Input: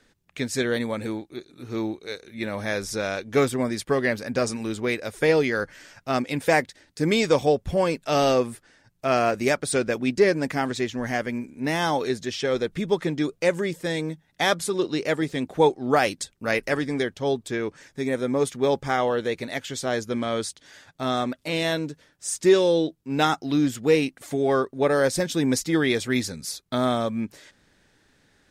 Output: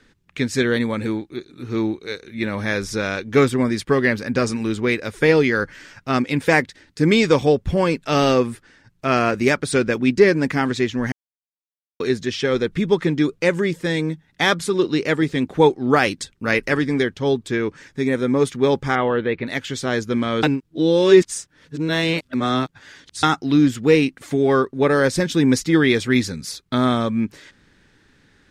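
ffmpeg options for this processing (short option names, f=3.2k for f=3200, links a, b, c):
-filter_complex "[0:a]asettb=1/sr,asplit=3[a][b][c];[a]atrim=end=18.954[d];[b]atrim=start=18.95:end=19.47,asetpts=PTS-STARTPTS,afade=t=in:d=0.004:c=qsin,afade=t=out:st=0.516:d=0.004:c=qsin,lowpass=f=3.1k:w=0.5412,lowpass=f=3.1k:w=1.3066[e];[c]atrim=start=19.466[f];[d][e]acrossfade=d=0.004:c1=hsin:c2=qsin[g];[g][f]acrossfade=d=0.004:c1=qsin:c2=hsin,asplit=5[h][i][j][k][l];[h]atrim=end=11.12,asetpts=PTS-STARTPTS,afade=t=out:st=11.116:d=0.004:c=hsin[m];[i]atrim=start=11.12:end=12,asetpts=PTS-STARTPTS,volume=0[n];[j]atrim=start=12:end=20.432,asetpts=PTS-STARTPTS,afade=t=in:d=0.004:c=hsin[o];[k]atrim=start=20.428:end=23.232,asetpts=PTS-STARTPTS,areverse[p];[l]atrim=start=23.228[q];[m][n][o]concat=n=3:v=0:a=1[r];[r][p]acrossfade=d=0.004:c1=hsin:c2=hsin[s];[s][q]acrossfade=d=0.004:c1=hsin:c2=hsin,lowpass=f=3.4k:p=1,equalizer=f=660:w=1.8:g=-8.5,volume=7.5dB"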